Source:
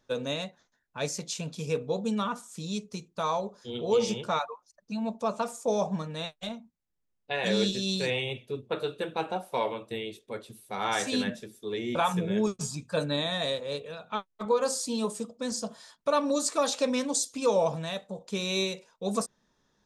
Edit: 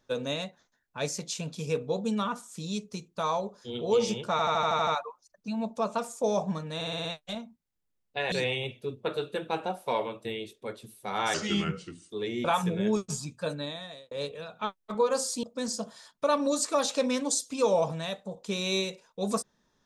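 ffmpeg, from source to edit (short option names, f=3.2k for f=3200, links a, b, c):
-filter_complex "[0:a]asplit=18[a][b][c][d][e][f][g][h][i][j][k][l][m][n][o][p][q][r];[a]atrim=end=4.392[s];[b]atrim=start=4.308:end=4.392[t];[c]atrim=start=4.308:end=4.392[u];[d]atrim=start=4.308:end=4.392[v];[e]atrim=start=4.308:end=4.392[w];[f]atrim=start=4.308:end=4.392[x];[g]atrim=start=4.308:end=4.392[y];[h]atrim=start=4.308:end=6.252[z];[i]atrim=start=6.188:end=6.252[aa];[j]atrim=start=6.188:end=6.252[ab];[k]atrim=start=6.188:end=6.252[ac];[l]atrim=start=6.188:end=6.252[ad];[m]atrim=start=6.188:end=7.462[ae];[n]atrim=start=7.978:end=11.004[af];[o]atrim=start=11:end=11.61,asetpts=PTS-STARTPTS,asetrate=35280,aresample=44100,atrim=end_sample=33626,asetpts=PTS-STARTPTS[ag];[p]atrim=start=11.606:end=13.62,asetpts=PTS-STARTPTS,afade=t=out:st=1.034:d=0.98[ah];[q]atrim=start=13.62:end=14.942,asetpts=PTS-STARTPTS,afade=t=in:d=0.004:c=hsin[ai];[r]atrim=start=15.268[aj];[s][t]acrossfade=d=0.004:c1=hsin:c2=hsin[ak];[ak][u]acrossfade=d=0.004:c1=hsin:c2=hsin[al];[al][v]acrossfade=d=0.004:c1=hsin:c2=hsin[am];[am][w]acrossfade=d=0.004:c1=hsin:c2=hsin[an];[an][x]acrossfade=d=0.004:c1=hsin:c2=hsin[ao];[ao][y]acrossfade=d=0.004:c1=hsin:c2=hsin[ap];[ap][z]acrossfade=d=0.004:c1=hsin:c2=hsin[aq];[aq][aa]acrossfade=d=0.004:c1=hsin:c2=hsin[ar];[ar][ab]acrossfade=d=0.004:c1=hsin:c2=hsin[as];[as][ac]acrossfade=d=0.004:c1=hsin:c2=hsin[at];[at][ad]acrossfade=d=0.004:c1=hsin:c2=hsin[au];[au][ae]acrossfade=d=0.004:c1=hsin:c2=hsin[av];[av][af]acrossfade=d=0.004:c1=hsin:c2=hsin[aw];[aw][ag]acrossfade=d=0.004:c1=hsin:c2=hsin[ax];[ah][ai]concat=n=2:v=0:a=1[ay];[ax][ay]acrossfade=d=0.004:c1=hsin:c2=hsin[az];[az][aj]acrossfade=d=0.004:c1=hsin:c2=hsin"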